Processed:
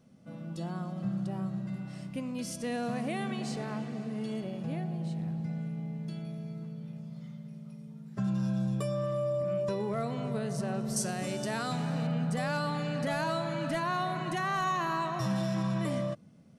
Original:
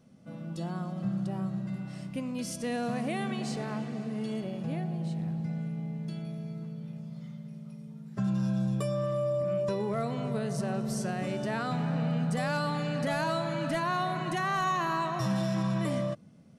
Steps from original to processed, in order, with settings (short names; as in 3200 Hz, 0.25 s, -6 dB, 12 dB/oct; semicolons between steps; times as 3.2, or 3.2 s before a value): 10.96–12.07 tone controls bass -1 dB, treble +12 dB; gain -1.5 dB